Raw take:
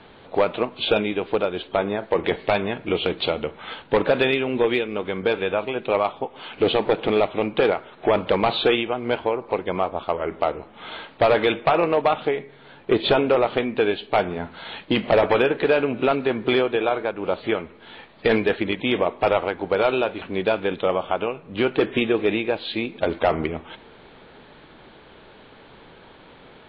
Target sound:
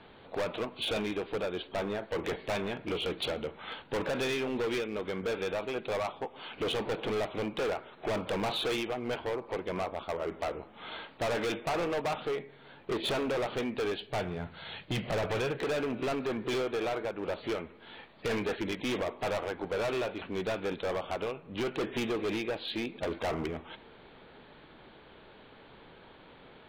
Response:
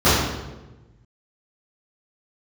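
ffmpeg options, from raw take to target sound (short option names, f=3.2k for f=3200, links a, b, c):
-filter_complex "[0:a]asettb=1/sr,asplit=3[a][b][c];[a]atrim=end=14.024[d];[b]atrim=start=14.02:end=15.59,asetpts=PTS-STARTPTS,afade=t=in:d=0.004:c=qsin,afade=t=out:st=1.566:d=0.004:c=qsin,equalizer=f=125:t=o:w=1:g=11,equalizer=f=250:t=o:w=1:g=-7,equalizer=f=1k:t=o:w=1:g=-4[e];[c]atrim=start=15.586[f];[d][e]acrossfade=d=0.004:c1=hsin:c2=qsin[g];[g][f]acrossfade=d=0.004:c1=qsin:c2=hsin,asoftclip=type=hard:threshold=-22dB,volume=-6.5dB"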